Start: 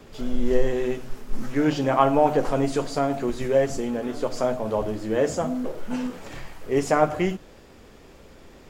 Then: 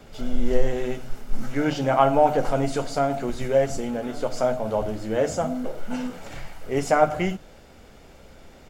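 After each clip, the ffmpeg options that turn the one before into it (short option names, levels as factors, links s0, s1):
-af "bandreject=f=50:t=h:w=6,bandreject=f=100:t=h:w=6,bandreject=f=150:t=h:w=6,aecho=1:1:1.4:0.35"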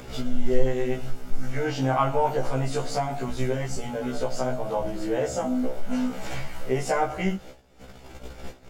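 -af "agate=range=0.0631:threshold=0.00631:ratio=16:detection=peak,acompressor=mode=upward:threshold=0.112:ratio=2.5,afftfilt=real='re*1.73*eq(mod(b,3),0)':imag='im*1.73*eq(mod(b,3),0)':win_size=2048:overlap=0.75"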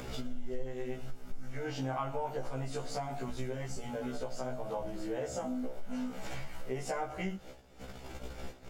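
-af "acompressor=threshold=0.0141:ratio=2.5,volume=0.891"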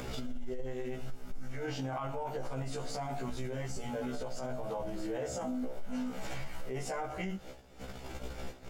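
-af "alimiter=level_in=2.24:limit=0.0631:level=0:latency=1:release=12,volume=0.447,volume=1.26"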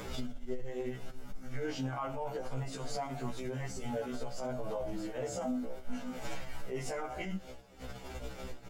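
-filter_complex "[0:a]asplit=2[s0][s1];[s1]adelay=6.8,afreqshift=-3[s2];[s0][s2]amix=inputs=2:normalize=1,volume=1.33"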